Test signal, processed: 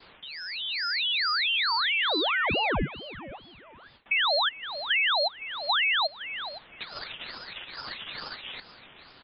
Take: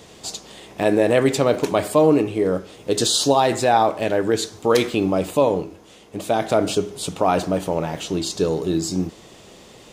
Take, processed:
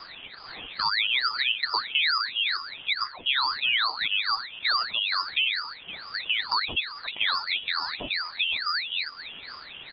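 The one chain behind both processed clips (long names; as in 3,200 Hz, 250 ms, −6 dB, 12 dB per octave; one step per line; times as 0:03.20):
expanding power law on the bin magnitudes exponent 1.8
bit-depth reduction 8 bits, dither triangular
downward compressor 2 to 1, threshold −34 dBFS
high-pass filter 180 Hz 12 dB per octave
voice inversion scrambler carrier 3,400 Hz
repeating echo 514 ms, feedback 30%, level −15 dB
noise gate with hold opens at −46 dBFS
ring modulator whose carrier an LFO sweeps 1,000 Hz, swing 85%, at 2.3 Hz
level +5.5 dB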